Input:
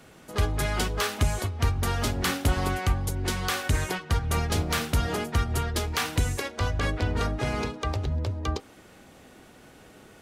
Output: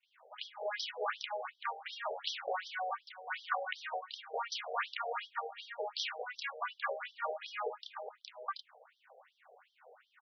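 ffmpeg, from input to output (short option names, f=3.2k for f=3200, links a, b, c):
-filter_complex "[0:a]adynamicsmooth=sensitivity=7.5:basefreq=2.1k,acrossover=split=3900[a][b];[a]adelay=30[c];[c][b]amix=inputs=2:normalize=0,afftfilt=real='re*between(b*sr/1024,570*pow(4400/570,0.5+0.5*sin(2*PI*2.7*pts/sr))/1.41,570*pow(4400/570,0.5+0.5*sin(2*PI*2.7*pts/sr))*1.41)':imag='im*between(b*sr/1024,570*pow(4400/570,0.5+0.5*sin(2*PI*2.7*pts/sr))/1.41,570*pow(4400/570,0.5+0.5*sin(2*PI*2.7*pts/sr))*1.41)':win_size=1024:overlap=0.75"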